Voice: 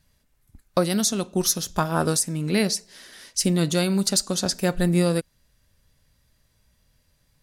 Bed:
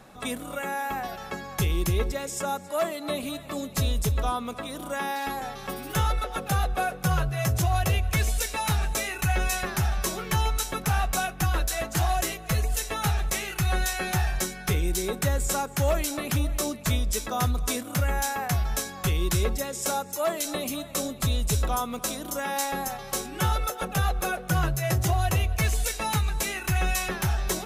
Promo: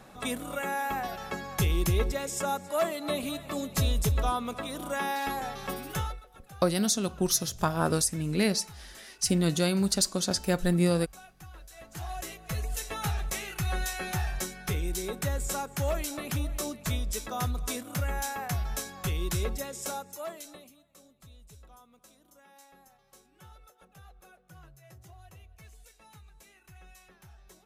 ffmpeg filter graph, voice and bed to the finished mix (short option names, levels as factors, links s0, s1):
-filter_complex "[0:a]adelay=5850,volume=0.631[s0];[1:a]volume=6.68,afade=t=out:st=5.73:d=0.49:silence=0.0794328,afade=t=in:st=11.69:d=1.2:silence=0.133352,afade=t=out:st=19.64:d=1.1:silence=0.0749894[s1];[s0][s1]amix=inputs=2:normalize=0"